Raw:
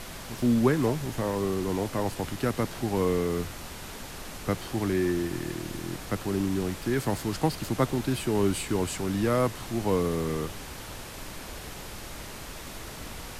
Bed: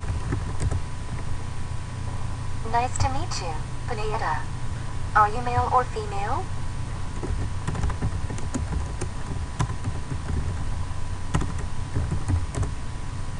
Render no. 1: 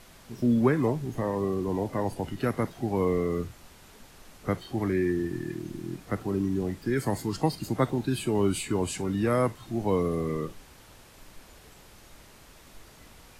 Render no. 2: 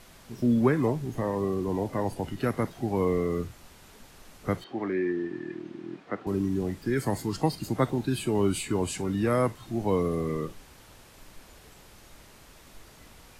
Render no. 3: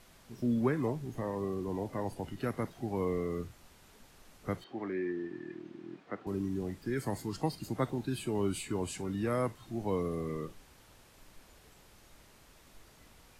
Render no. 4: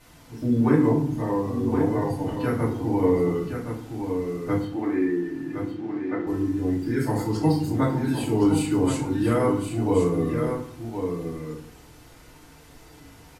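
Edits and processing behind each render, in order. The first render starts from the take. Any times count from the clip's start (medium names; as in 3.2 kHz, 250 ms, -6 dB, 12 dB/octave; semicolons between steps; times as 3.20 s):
noise print and reduce 12 dB
4.64–6.27 s: band-pass 260–3000 Hz
trim -7 dB
on a send: delay 1068 ms -7 dB; on the sum: FDN reverb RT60 0.54 s, low-frequency decay 1.45×, high-frequency decay 0.6×, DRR -7.5 dB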